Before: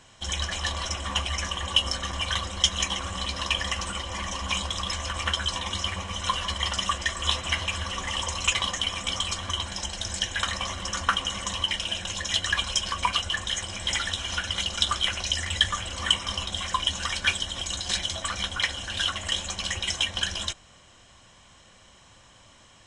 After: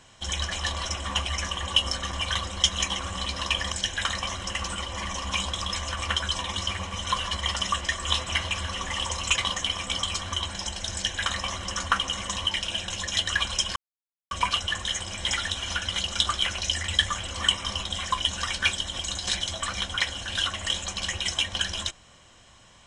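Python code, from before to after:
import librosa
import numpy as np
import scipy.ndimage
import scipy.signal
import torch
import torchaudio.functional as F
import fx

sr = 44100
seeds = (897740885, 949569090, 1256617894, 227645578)

y = fx.edit(x, sr, fx.duplicate(start_s=10.1, length_s=0.83, to_s=3.72),
    fx.insert_silence(at_s=12.93, length_s=0.55), tone=tone)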